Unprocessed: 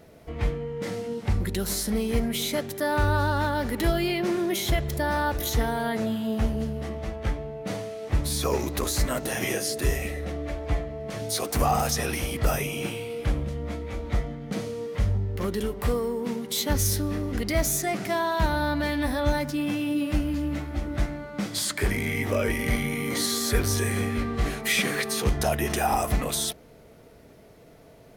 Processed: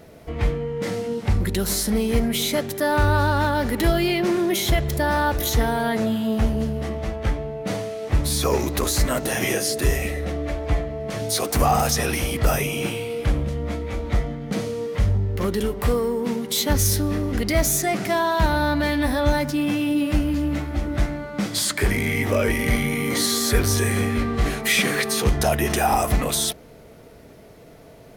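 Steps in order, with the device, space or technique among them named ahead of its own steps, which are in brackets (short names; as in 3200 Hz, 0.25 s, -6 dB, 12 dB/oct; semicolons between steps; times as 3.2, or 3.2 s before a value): parallel distortion (in parallel at -12.5 dB: hard clip -26.5 dBFS, distortion -8 dB); on the sum: gain +3.5 dB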